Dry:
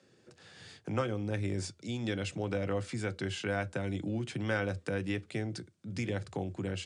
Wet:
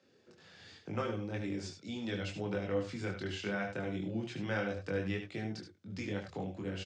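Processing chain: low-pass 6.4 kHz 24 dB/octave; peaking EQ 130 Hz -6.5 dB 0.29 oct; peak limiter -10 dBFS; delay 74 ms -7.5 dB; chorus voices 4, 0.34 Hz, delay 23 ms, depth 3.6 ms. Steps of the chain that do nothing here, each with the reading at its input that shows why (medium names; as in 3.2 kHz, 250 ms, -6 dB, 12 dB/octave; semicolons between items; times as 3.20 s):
peak limiter -10 dBFS: peak at its input -18.0 dBFS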